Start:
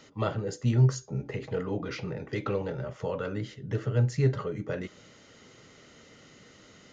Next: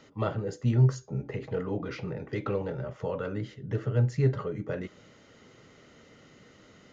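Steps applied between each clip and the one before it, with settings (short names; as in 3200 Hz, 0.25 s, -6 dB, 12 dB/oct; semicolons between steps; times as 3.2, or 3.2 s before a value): high shelf 3200 Hz -8 dB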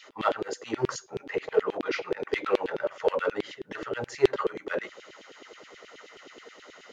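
in parallel at -8.5 dB: hard clip -31.5 dBFS, distortion -3 dB; on the sum: LFO high-pass saw down 9.4 Hz 310–3400 Hz; gain +3.5 dB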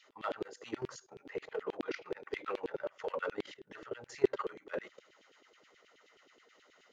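level quantiser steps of 15 dB; gain -5 dB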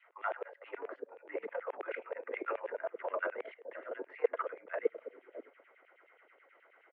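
mistuned SSB +71 Hz 230–2300 Hz; bands offset in time highs, lows 0.61 s, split 440 Hz; gain +2.5 dB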